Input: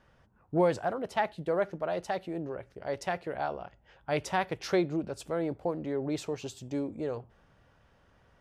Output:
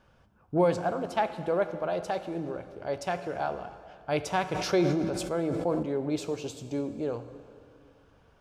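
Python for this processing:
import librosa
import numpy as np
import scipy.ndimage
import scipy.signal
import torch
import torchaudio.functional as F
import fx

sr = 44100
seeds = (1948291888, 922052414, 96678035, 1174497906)

y = fx.notch(x, sr, hz=1900.0, q=6.9)
y = fx.rev_plate(y, sr, seeds[0], rt60_s=2.3, hf_ratio=0.85, predelay_ms=0, drr_db=10.0)
y = fx.sustainer(y, sr, db_per_s=30.0, at=(4.46, 5.83))
y = y * 10.0 ** (1.5 / 20.0)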